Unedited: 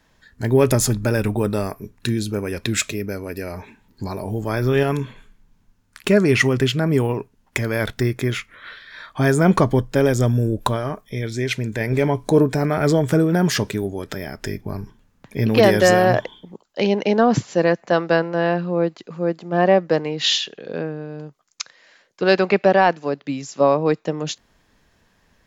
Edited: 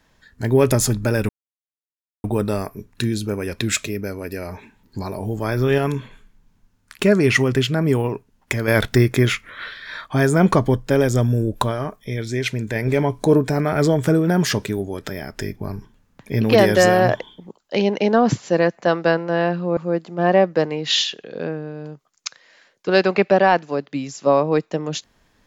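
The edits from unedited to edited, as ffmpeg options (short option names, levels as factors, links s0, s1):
-filter_complex "[0:a]asplit=5[s0][s1][s2][s3][s4];[s0]atrim=end=1.29,asetpts=PTS-STARTPTS,afade=t=out:st=1.286:d=0.004:c=hsin,apad=pad_dur=0.95[s5];[s1]atrim=start=1.29:end=7.732,asetpts=PTS-STARTPTS,afade=t=in:d=0.004:c=hsin[s6];[s2]atrim=start=7.728:end=9.112,asetpts=PTS-STARTPTS,volume=1.88[s7];[s3]atrim=start=9.108:end=18.822[s8];[s4]atrim=start=19.108[s9];[s5][s6]concat=n=2:v=0:a=1[s10];[s10][s7]acrossfade=d=0.004:c1=hsin:c2=hsin[s11];[s11][s8]acrossfade=d=0.004:c1=hsin:c2=hsin[s12];[s12][s9]acrossfade=d=0.004:c1=hsin:c2=hsin"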